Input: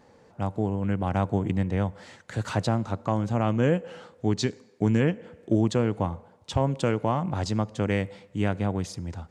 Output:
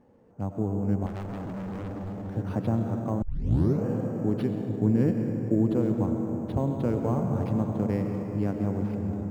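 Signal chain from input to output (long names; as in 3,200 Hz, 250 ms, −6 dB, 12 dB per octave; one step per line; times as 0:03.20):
convolution reverb RT60 4.9 s, pre-delay 60 ms, DRR 2.5 dB
bad sample-rate conversion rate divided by 6×, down none, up hold
drawn EQ curve 160 Hz 0 dB, 240 Hz +3 dB, 8,600 Hz −21 dB
0:01.06–0:02.36: gain into a clipping stage and back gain 30.5 dB
0:03.22: tape start 0.63 s
level −2.5 dB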